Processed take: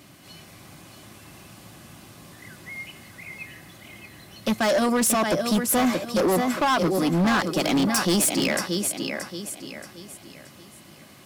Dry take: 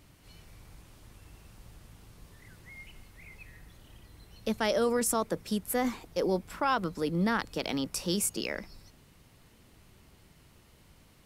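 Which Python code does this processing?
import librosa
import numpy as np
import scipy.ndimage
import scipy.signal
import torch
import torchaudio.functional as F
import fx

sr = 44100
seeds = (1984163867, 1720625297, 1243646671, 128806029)

p1 = fx.rider(x, sr, range_db=10, speed_s=0.5)
p2 = x + (p1 * librosa.db_to_amplitude(3.0))
p3 = scipy.signal.sosfilt(scipy.signal.butter(2, 160.0, 'highpass', fs=sr, output='sos'), p2)
p4 = fx.notch_comb(p3, sr, f0_hz=460.0)
p5 = fx.echo_feedback(p4, sr, ms=627, feedback_pct=38, wet_db=-8)
p6 = np.clip(p5, -10.0 ** (-23.5 / 20.0), 10.0 ** (-23.5 / 20.0))
y = p6 * librosa.db_to_amplitude(5.5)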